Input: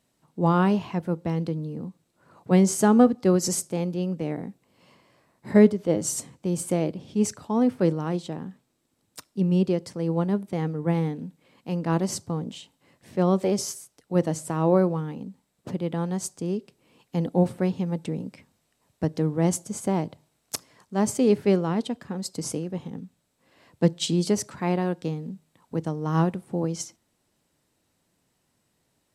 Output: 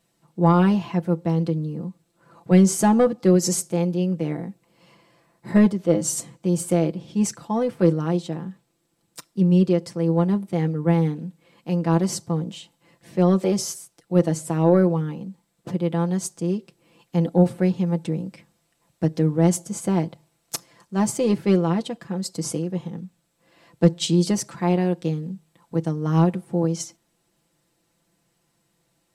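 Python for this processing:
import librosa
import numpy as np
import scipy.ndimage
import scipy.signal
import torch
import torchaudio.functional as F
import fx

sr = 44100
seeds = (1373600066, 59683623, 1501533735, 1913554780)

y = 10.0 ** (-7.0 / 20.0) * np.tanh(x / 10.0 ** (-7.0 / 20.0))
y = y + 0.67 * np.pad(y, (int(5.9 * sr / 1000.0), 0))[:len(y)]
y = y * librosa.db_to_amplitude(1.0)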